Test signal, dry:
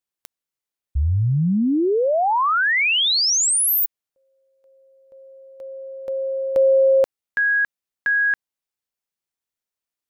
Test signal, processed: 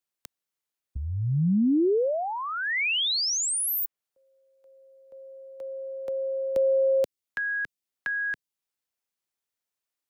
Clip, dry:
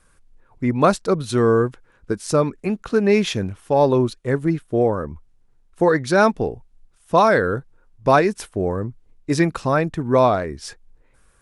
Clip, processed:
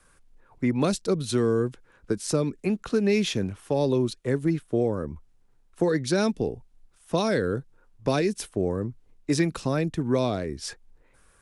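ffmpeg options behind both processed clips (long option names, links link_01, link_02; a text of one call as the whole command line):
ffmpeg -i in.wav -filter_complex "[0:a]acrossover=split=140|470|2500[link_01][link_02][link_03][link_04];[link_01]acompressor=threshold=-31dB:ratio=4[link_05];[link_02]acompressor=threshold=-20dB:ratio=4[link_06];[link_03]acompressor=threshold=-38dB:ratio=4[link_07];[link_04]acompressor=threshold=-28dB:ratio=4[link_08];[link_05][link_06][link_07][link_08]amix=inputs=4:normalize=0,lowshelf=frequency=160:gain=-4.5" out.wav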